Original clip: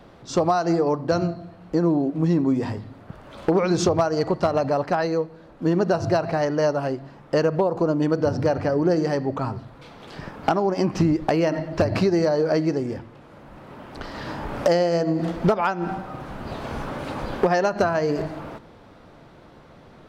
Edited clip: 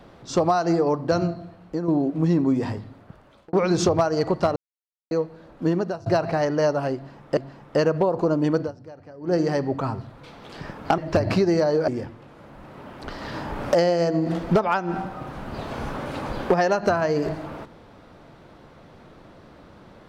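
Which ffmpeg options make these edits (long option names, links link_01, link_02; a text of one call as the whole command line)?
ffmpeg -i in.wav -filter_complex "[0:a]asplit=11[link_01][link_02][link_03][link_04][link_05][link_06][link_07][link_08][link_09][link_10][link_11];[link_01]atrim=end=1.88,asetpts=PTS-STARTPTS,afade=type=out:start_time=1.43:duration=0.45:silence=0.354813[link_12];[link_02]atrim=start=1.88:end=3.53,asetpts=PTS-STARTPTS,afade=type=in:duration=0.004:curve=hsin:silence=0.354813,afade=type=out:start_time=0.84:duration=0.81[link_13];[link_03]atrim=start=3.53:end=4.56,asetpts=PTS-STARTPTS,afade=type=in:duration=0.004:curve=hsin,afade=type=out:start_time=1.026:duration=0.004:curve=hsin[link_14];[link_04]atrim=start=4.56:end=5.11,asetpts=PTS-STARTPTS,volume=0[link_15];[link_05]atrim=start=5.11:end=6.06,asetpts=PTS-STARTPTS,afade=type=in:duration=0.004:curve=hsin,afade=type=out:start_time=0.54:duration=0.41:silence=0.0749894[link_16];[link_06]atrim=start=6.06:end=7.372,asetpts=PTS-STARTPTS,afade=type=in:duration=0.004:curve=hsin:silence=0.0749894[link_17];[link_07]atrim=start=6.948:end=8.34,asetpts=PTS-STARTPTS,afade=type=out:start_time=1.232:duration=0.16:curve=qua:silence=0.0891251[link_18];[link_08]atrim=start=8.34:end=8.76,asetpts=PTS-STARTPTS,volume=-21dB[link_19];[link_09]atrim=start=8.76:end=10.562,asetpts=PTS-STARTPTS,afade=type=in:duration=0.16:curve=qua:silence=0.0891251[link_20];[link_10]atrim=start=11.628:end=12.532[link_21];[link_11]atrim=start=12.808[link_22];[link_12][link_13][link_14][link_15][link_16][link_17]concat=n=6:v=0:a=1[link_23];[link_18][link_19][link_20]concat=n=3:v=0:a=1[link_24];[link_23][link_24]acrossfade=duration=0.004:curve1=hsin:curve2=hsin[link_25];[link_25][link_21]acrossfade=duration=0.004:curve1=hsin:curve2=hsin[link_26];[link_26][link_22]acrossfade=duration=0.004:curve1=hsin:curve2=hsin" out.wav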